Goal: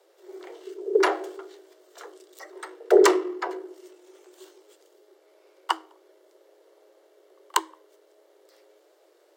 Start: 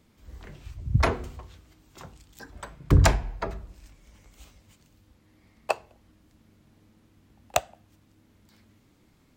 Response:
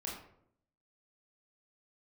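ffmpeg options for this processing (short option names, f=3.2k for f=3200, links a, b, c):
-af "aeval=exprs='if(lt(val(0),0),0.708*val(0),val(0))':c=same,afreqshift=320,bandreject=f=2.5k:w=7.5,volume=2.5dB"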